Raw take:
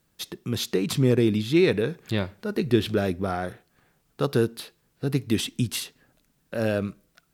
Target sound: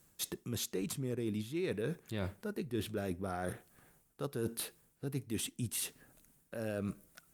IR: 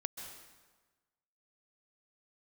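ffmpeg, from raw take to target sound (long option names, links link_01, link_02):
-af "highshelf=frequency=5700:width_type=q:width=1.5:gain=6,areverse,acompressor=threshold=-35dB:ratio=6,areverse" -ar 48000 -c:a libopus -b:a 48k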